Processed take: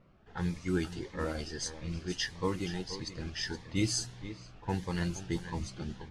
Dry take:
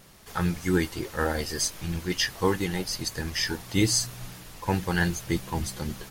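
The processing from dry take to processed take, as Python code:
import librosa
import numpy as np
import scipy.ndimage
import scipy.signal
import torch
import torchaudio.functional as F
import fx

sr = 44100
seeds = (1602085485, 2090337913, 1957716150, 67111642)

p1 = scipy.signal.sosfilt(scipy.signal.bessel(4, 7500.0, 'lowpass', norm='mag', fs=sr, output='sos'), x)
p2 = p1 + fx.echo_single(p1, sr, ms=474, db=-13.0, dry=0)
p3 = fx.env_lowpass(p2, sr, base_hz=1500.0, full_db=-22.0)
p4 = fx.notch_cascade(p3, sr, direction='rising', hz=1.6)
y = p4 * librosa.db_to_amplitude(-6.5)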